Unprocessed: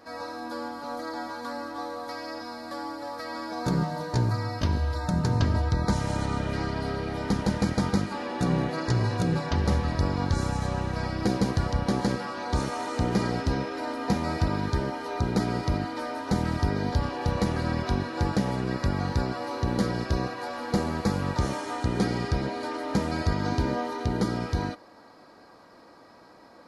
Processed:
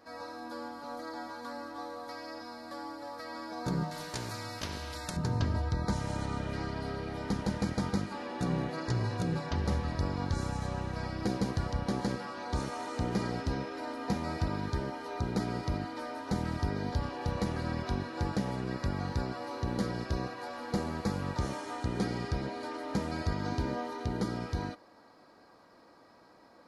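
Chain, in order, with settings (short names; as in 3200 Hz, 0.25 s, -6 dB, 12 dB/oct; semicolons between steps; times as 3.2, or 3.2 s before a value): 3.91–5.17 spectral compressor 2:1; gain -6.5 dB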